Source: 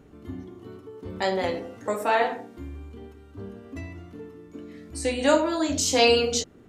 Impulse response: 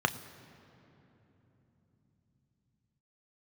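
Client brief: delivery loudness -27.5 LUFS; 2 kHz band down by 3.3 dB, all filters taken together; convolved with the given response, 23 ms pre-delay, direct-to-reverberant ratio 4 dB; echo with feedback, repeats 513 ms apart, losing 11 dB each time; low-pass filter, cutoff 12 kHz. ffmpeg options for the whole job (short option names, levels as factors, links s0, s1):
-filter_complex "[0:a]lowpass=12000,equalizer=f=2000:t=o:g=-4.5,aecho=1:1:513|1026|1539:0.282|0.0789|0.0221,asplit=2[s0][s1];[1:a]atrim=start_sample=2205,adelay=23[s2];[s1][s2]afir=irnorm=-1:irlink=0,volume=0.2[s3];[s0][s3]amix=inputs=2:normalize=0,volume=0.631"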